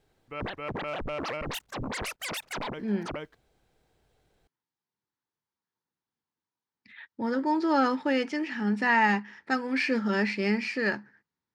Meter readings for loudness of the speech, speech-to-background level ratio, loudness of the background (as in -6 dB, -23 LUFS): -27.5 LUFS, 8.0 dB, -35.5 LUFS